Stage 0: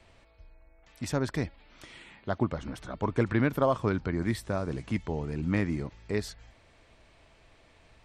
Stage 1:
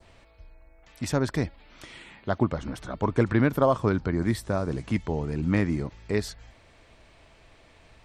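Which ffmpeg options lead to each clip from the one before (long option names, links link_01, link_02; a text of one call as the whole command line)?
ffmpeg -i in.wav -af "adynamicequalizer=threshold=0.00282:dfrequency=2500:dqfactor=1.2:tfrequency=2500:tqfactor=1.2:attack=5:release=100:ratio=0.375:range=2:mode=cutabove:tftype=bell,volume=4dB" out.wav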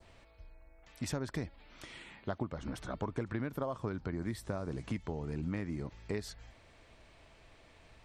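ffmpeg -i in.wav -af "acompressor=threshold=-28dB:ratio=10,volume=-4.5dB" out.wav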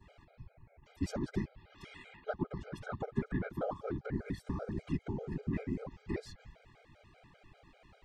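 ffmpeg -i in.wav -af "lowpass=frequency=2600:poles=1,afftfilt=real='hypot(re,im)*cos(2*PI*random(0))':imag='hypot(re,im)*sin(2*PI*random(1))':win_size=512:overlap=0.75,afftfilt=real='re*gt(sin(2*PI*5.1*pts/sr)*(1-2*mod(floor(b*sr/1024/410),2)),0)':imag='im*gt(sin(2*PI*5.1*pts/sr)*(1-2*mod(floor(b*sr/1024/410),2)),0)':win_size=1024:overlap=0.75,volume=9dB" out.wav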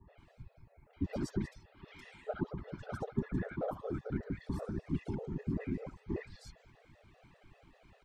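ffmpeg -i in.wav -filter_complex "[0:a]acrossover=split=1200|3800[link_01][link_02][link_03];[link_02]adelay=70[link_04];[link_03]adelay=180[link_05];[link_01][link_04][link_05]amix=inputs=3:normalize=0" out.wav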